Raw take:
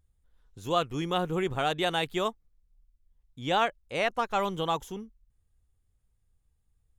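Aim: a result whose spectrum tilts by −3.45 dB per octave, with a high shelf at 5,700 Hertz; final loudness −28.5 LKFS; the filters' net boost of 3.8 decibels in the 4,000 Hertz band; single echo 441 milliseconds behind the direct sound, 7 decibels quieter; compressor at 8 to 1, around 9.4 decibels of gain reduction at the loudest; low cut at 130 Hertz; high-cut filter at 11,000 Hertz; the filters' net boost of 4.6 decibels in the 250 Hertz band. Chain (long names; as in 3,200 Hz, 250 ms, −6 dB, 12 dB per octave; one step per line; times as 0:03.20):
high-pass filter 130 Hz
low-pass filter 11,000 Hz
parametric band 250 Hz +8 dB
parametric band 4,000 Hz +3.5 dB
high-shelf EQ 5,700 Hz +4.5 dB
downward compressor 8 to 1, threshold −30 dBFS
single-tap delay 441 ms −7 dB
level +6.5 dB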